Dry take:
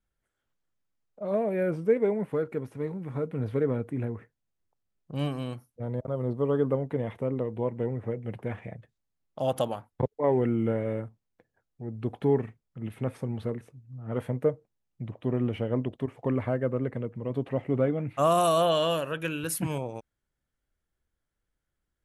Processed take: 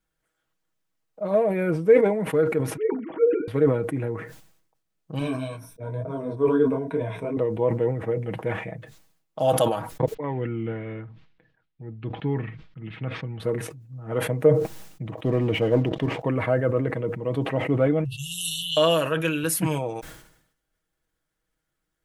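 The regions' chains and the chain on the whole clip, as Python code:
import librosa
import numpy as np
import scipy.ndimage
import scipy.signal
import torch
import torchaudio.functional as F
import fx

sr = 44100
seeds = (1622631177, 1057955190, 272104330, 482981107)

y = fx.chain(x, sr, fx.sine_speech(),
    fx.hum_notches(base_hz=60, count=10), at=(2.77, 3.48))
y = fx.chain(y, sr, fx.ripple_eq(per_octave=1.6, db=13),
    fx.detune_double(cents=32), at=(5.19, 7.37))
y = fx.chain(y, sr, fx.lowpass(hz=3500.0, slope=24),
    fx.peak_eq(hz=590.0, db=-11.0, octaves=2.3), at=(10.14, 13.4))
y = fx.chain(y, sr, fx.lowpass(hz=4000.0, slope=12),
    fx.peak_eq(hz=1400.0, db=-7.5, octaves=0.41),
    fx.leveller(passes=1), at=(15.24, 16.2))
y = fx.chain(y, sr, fx.brickwall_bandstop(low_hz=150.0, high_hz=2600.0),
    fx.doubler(ms=16.0, db=-7), at=(18.04, 18.77))
y = fx.low_shelf(y, sr, hz=140.0, db=-7.5)
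y = y + 0.54 * np.pad(y, (int(6.3 * sr / 1000.0), 0))[:len(y)]
y = fx.sustainer(y, sr, db_per_s=77.0)
y = y * 10.0 ** (5.0 / 20.0)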